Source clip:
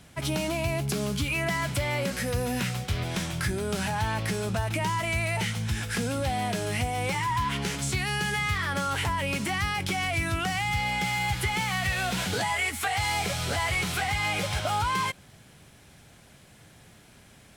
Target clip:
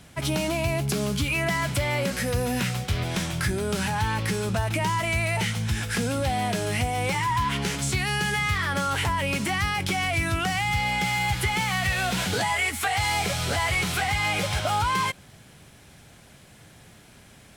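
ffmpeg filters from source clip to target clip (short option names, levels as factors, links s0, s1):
-filter_complex "[0:a]asplit=2[s0][s1];[s1]aeval=exprs='clip(val(0),-1,0.075)':c=same,volume=0.376[s2];[s0][s2]amix=inputs=2:normalize=0,asettb=1/sr,asplit=3[s3][s4][s5];[s3]atrim=end=3.724[s6];[s4]atrim=start=3.72:end=4.54,asetpts=PTS-STARTPTS,afade=t=in:d=0.004:c=qsin,afade=t=out:st=0.816:d=0.004:c=qsin,asuperstop=centerf=690:order=4:qfactor=4.4[s7];[s5]atrim=start=4.536[s8];[s6][s7]acrossfade=d=0.004:c1=hsin:c2=qsin[s9];[s9][s8]acrossfade=d=0.004:c1=qsin:c2=hsin"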